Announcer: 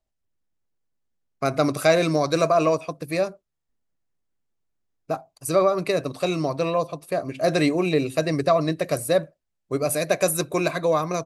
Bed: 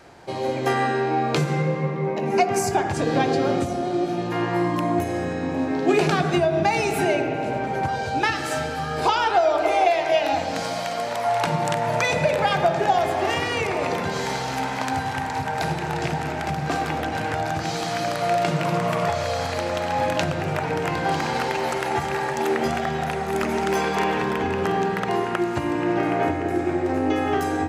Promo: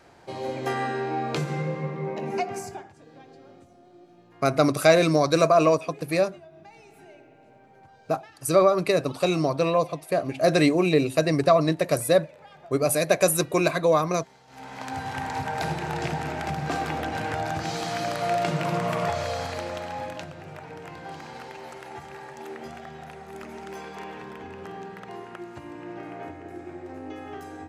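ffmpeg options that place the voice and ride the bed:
-filter_complex "[0:a]adelay=3000,volume=1.12[s0];[1:a]volume=8.91,afade=t=out:st=2.22:d=0.7:silence=0.0749894,afade=t=in:st=14.47:d=0.82:silence=0.0562341,afade=t=out:st=19.18:d=1.1:silence=0.237137[s1];[s0][s1]amix=inputs=2:normalize=0"

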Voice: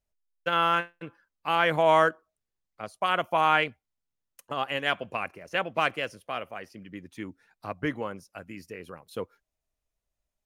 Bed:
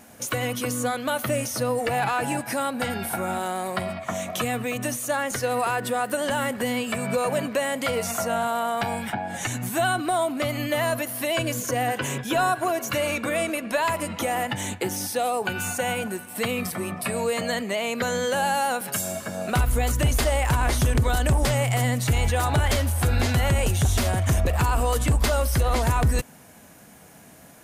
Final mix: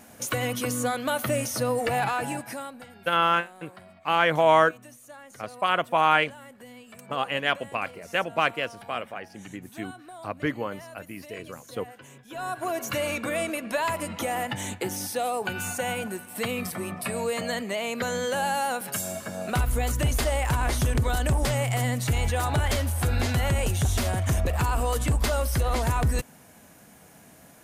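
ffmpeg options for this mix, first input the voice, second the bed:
-filter_complex "[0:a]adelay=2600,volume=1.26[s0];[1:a]volume=6.68,afade=t=out:st=1.97:d=0.89:silence=0.105925,afade=t=in:st=12.28:d=0.52:silence=0.133352[s1];[s0][s1]amix=inputs=2:normalize=0"

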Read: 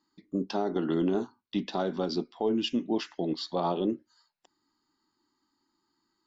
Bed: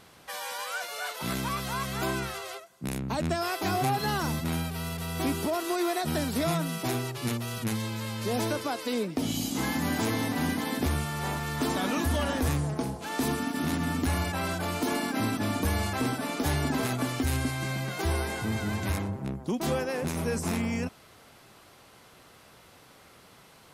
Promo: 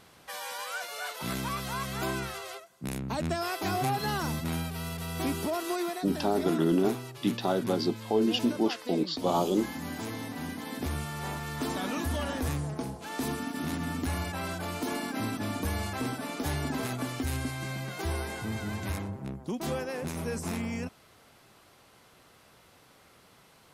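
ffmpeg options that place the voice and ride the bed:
-filter_complex "[0:a]adelay=5700,volume=1.26[s0];[1:a]volume=1.33,afade=t=out:st=5.73:d=0.28:silence=0.473151,afade=t=in:st=10.57:d=0.47:silence=0.595662[s1];[s0][s1]amix=inputs=2:normalize=0"

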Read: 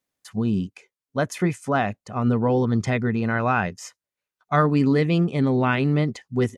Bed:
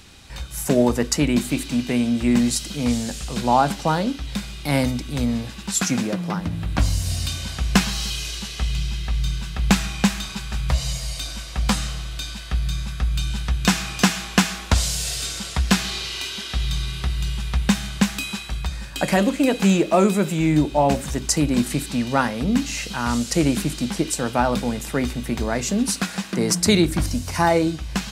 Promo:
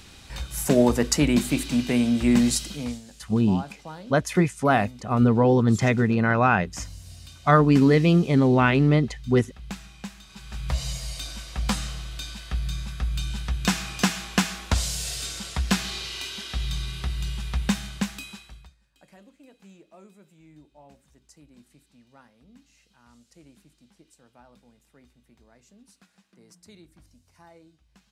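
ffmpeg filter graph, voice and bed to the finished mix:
-filter_complex "[0:a]adelay=2950,volume=1.26[s0];[1:a]volume=4.47,afade=t=out:st=2.52:d=0.49:silence=0.125893,afade=t=in:st=10.26:d=0.53:silence=0.199526,afade=t=out:st=17.66:d=1.09:silence=0.0354813[s1];[s0][s1]amix=inputs=2:normalize=0"

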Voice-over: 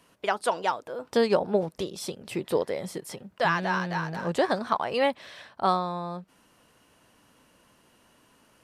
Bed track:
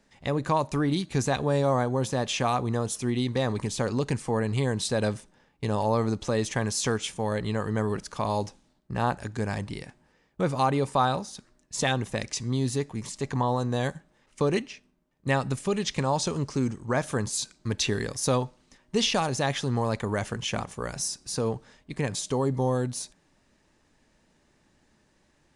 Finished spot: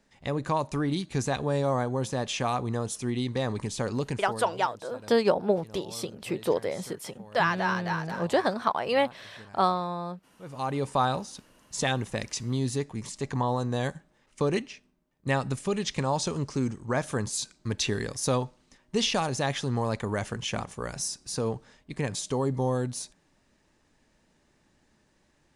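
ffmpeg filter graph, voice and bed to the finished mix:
-filter_complex "[0:a]adelay=3950,volume=1[s0];[1:a]volume=7.08,afade=t=out:st=4:d=0.52:silence=0.11885,afade=t=in:st=10.42:d=0.5:silence=0.105925[s1];[s0][s1]amix=inputs=2:normalize=0"

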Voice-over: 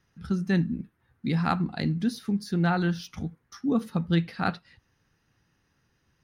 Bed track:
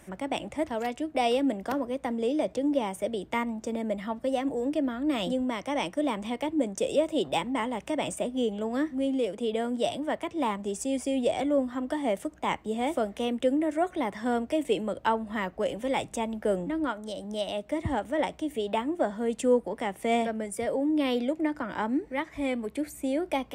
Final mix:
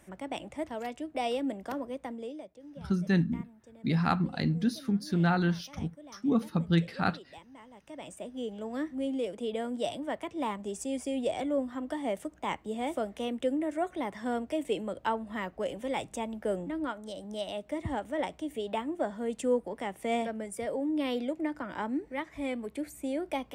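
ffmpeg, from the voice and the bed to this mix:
-filter_complex "[0:a]adelay=2600,volume=0.841[s0];[1:a]volume=3.98,afade=t=out:st=1.94:d=0.56:silence=0.149624,afade=t=in:st=7.69:d=1.32:silence=0.125893[s1];[s0][s1]amix=inputs=2:normalize=0"

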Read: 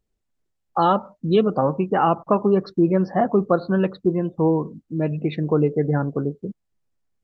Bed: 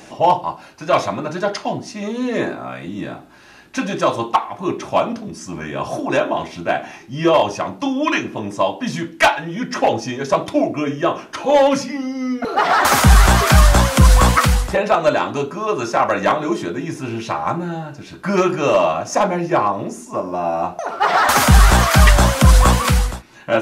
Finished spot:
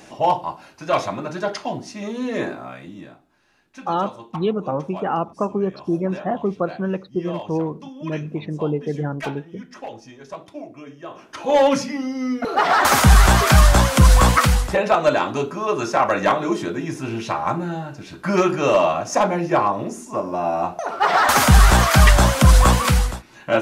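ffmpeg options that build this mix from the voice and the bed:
-filter_complex "[0:a]adelay=3100,volume=0.631[s0];[1:a]volume=4.22,afade=t=out:st=2.53:d=0.66:silence=0.199526,afade=t=in:st=11.09:d=0.57:silence=0.149624[s1];[s0][s1]amix=inputs=2:normalize=0"

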